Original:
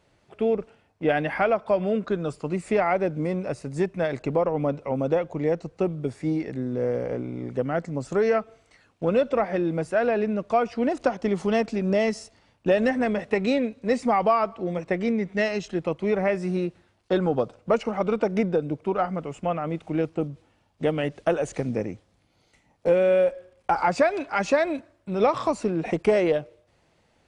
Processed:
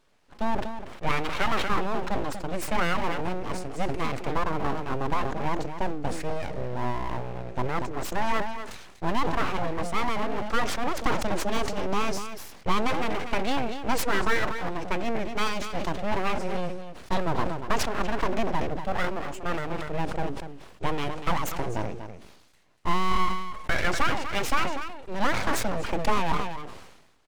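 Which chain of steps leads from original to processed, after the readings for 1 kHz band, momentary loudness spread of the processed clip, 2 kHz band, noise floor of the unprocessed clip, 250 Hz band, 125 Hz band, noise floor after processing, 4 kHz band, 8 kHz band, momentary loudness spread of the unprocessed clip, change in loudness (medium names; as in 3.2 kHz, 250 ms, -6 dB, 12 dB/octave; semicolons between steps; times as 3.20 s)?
+0.5 dB, 8 LU, +1.5 dB, -65 dBFS, -6.0 dB, -2.5 dB, -50 dBFS, +6.5 dB, no reading, 7 LU, -4.0 dB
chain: delay 242 ms -10 dB; full-wave rectifier; decay stretcher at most 55 dB/s; trim -1 dB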